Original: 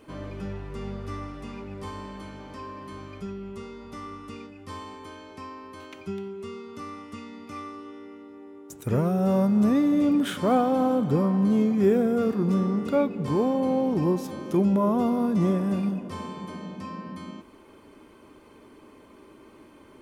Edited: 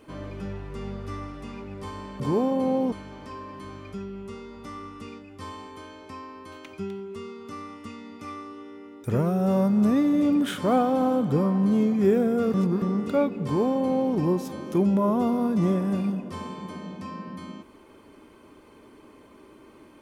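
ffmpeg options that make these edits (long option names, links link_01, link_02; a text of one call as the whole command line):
ffmpeg -i in.wav -filter_complex "[0:a]asplit=6[link_01][link_02][link_03][link_04][link_05][link_06];[link_01]atrim=end=2.202[link_07];[link_02]atrim=start=13.228:end=13.952[link_08];[link_03]atrim=start=2.198:end=8.322[link_09];[link_04]atrim=start=8.828:end=12.332[link_10];[link_05]atrim=start=12.328:end=12.612,asetpts=PTS-STARTPTS,areverse[link_11];[link_06]atrim=start=12.608[link_12];[link_07][link_08]acrossfade=duration=0.004:curve1=hsin:curve2=hsin[link_13];[link_13][link_09]acrossfade=duration=0.004:curve1=hsin:curve2=hsin[link_14];[link_14][link_10]acrossfade=duration=0.004:curve1=hsin:curve2=hsin[link_15];[link_15][link_11]acrossfade=duration=0.004:curve1=hsin:curve2=hsin[link_16];[link_16][link_12]acrossfade=duration=0.004:curve1=hsin:curve2=hsin" out.wav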